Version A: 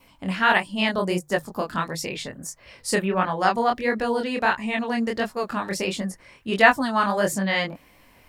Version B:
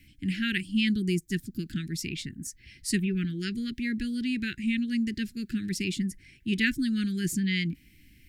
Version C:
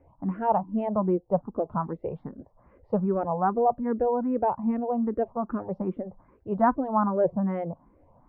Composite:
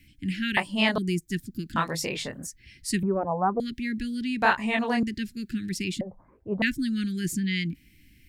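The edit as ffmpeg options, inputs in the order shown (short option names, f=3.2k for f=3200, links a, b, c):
-filter_complex "[0:a]asplit=3[a][b][c];[2:a]asplit=2[d][e];[1:a]asplit=6[f][g][h][i][j][k];[f]atrim=end=0.572[l];[a]atrim=start=0.568:end=0.982[m];[g]atrim=start=0.978:end=1.762[n];[b]atrim=start=1.758:end=2.462[o];[h]atrim=start=2.458:end=3.032[p];[d]atrim=start=3.028:end=3.602[q];[i]atrim=start=3.598:end=4.422[r];[c]atrim=start=4.418:end=5.032[s];[j]atrim=start=5.028:end=6.012[t];[e]atrim=start=6.008:end=6.622[u];[k]atrim=start=6.618[v];[l][m]acrossfade=d=0.004:c1=hsin:c2=hsin[w];[w][n]acrossfade=d=0.004:c1=hsin:c2=hsin[x];[x][o]acrossfade=d=0.004:c1=hsin:c2=hsin[y];[y][p]acrossfade=d=0.004:c1=hsin:c2=hsin[z];[z][q]acrossfade=d=0.004:c1=hsin:c2=hsin[aa];[aa][r]acrossfade=d=0.004:c1=hsin:c2=hsin[ab];[ab][s]acrossfade=d=0.004:c1=hsin:c2=hsin[ac];[ac][t]acrossfade=d=0.004:c1=hsin:c2=hsin[ad];[ad][u]acrossfade=d=0.004:c1=hsin:c2=hsin[ae];[ae][v]acrossfade=d=0.004:c1=hsin:c2=hsin"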